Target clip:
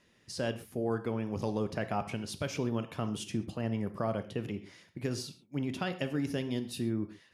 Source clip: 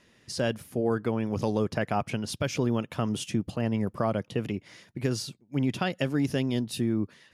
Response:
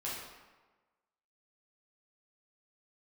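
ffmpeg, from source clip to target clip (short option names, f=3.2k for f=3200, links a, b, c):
-filter_complex "[0:a]asplit=2[a][b];[1:a]atrim=start_sample=2205,atrim=end_sample=6174[c];[b][c]afir=irnorm=-1:irlink=0,volume=-8.5dB[d];[a][d]amix=inputs=2:normalize=0,volume=-7.5dB"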